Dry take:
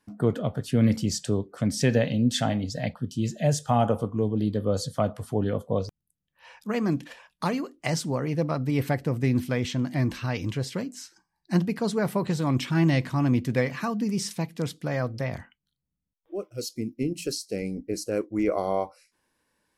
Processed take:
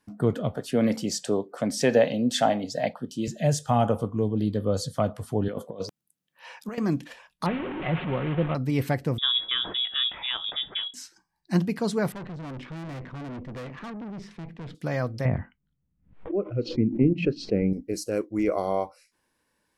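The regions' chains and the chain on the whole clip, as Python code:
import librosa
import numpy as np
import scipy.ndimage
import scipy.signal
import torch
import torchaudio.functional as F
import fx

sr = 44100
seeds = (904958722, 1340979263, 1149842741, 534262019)

y = fx.chain(x, sr, fx.highpass(hz=220.0, slope=12),
    fx.peak_eq(hz=710.0, db=8.0, octaves=1.4), at=(0.56, 3.28))
y = fx.chain(y, sr, fx.highpass(hz=210.0, slope=12),
    fx.over_compress(threshold_db=-32.0, ratio=-0.5), at=(5.48, 6.78))
y = fx.chain(y, sr, fx.delta_mod(bps=16000, step_db=-25.5),
    fx.peak_eq(hz=1800.0, db=-3.5, octaves=2.7),
    fx.comb(ms=5.5, depth=0.3), at=(7.46, 8.55))
y = fx.chain(y, sr, fx.peak_eq(hz=84.0, db=-13.5, octaves=0.79),
    fx.freq_invert(carrier_hz=3600), at=(9.18, 10.94))
y = fx.chain(y, sr, fx.lowpass(hz=1700.0, slope=12),
    fx.tube_stage(drive_db=35.0, bias=0.75),
    fx.sustainer(db_per_s=99.0), at=(12.12, 14.75))
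y = fx.chain(y, sr, fx.lowpass(hz=2400.0, slope=24),
    fx.low_shelf(hz=460.0, db=10.0),
    fx.pre_swell(db_per_s=130.0), at=(15.25, 17.73))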